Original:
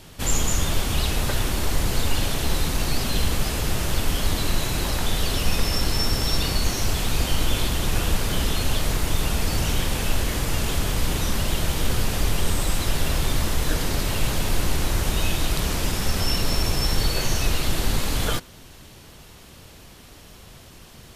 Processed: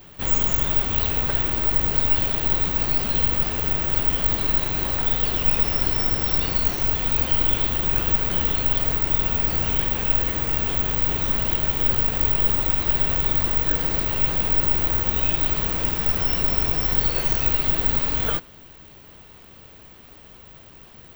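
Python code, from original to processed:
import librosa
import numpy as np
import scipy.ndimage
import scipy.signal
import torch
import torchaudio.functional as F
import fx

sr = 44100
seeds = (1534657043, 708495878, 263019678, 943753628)

y = fx.bass_treble(x, sr, bass_db=-3, treble_db=-10)
y = (np.kron(scipy.signal.resample_poly(y, 1, 2), np.eye(2)[0]) * 2)[:len(y)]
y = y * librosa.db_to_amplitude(-1.0)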